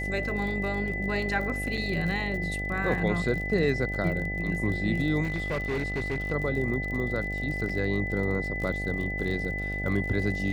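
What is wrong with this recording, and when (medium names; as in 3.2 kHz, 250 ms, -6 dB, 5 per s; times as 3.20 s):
buzz 50 Hz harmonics 16 -34 dBFS
crackle 42 per s -34 dBFS
whine 2 kHz -32 dBFS
1.77–1.78 s: dropout 5.1 ms
5.23–6.33 s: clipped -25 dBFS
7.69 s: dropout 4.3 ms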